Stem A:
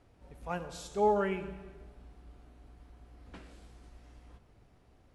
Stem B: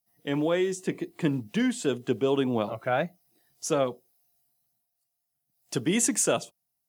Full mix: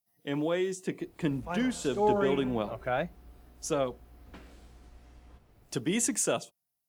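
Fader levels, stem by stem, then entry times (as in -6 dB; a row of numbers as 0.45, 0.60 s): +0.5, -4.0 dB; 1.00, 0.00 s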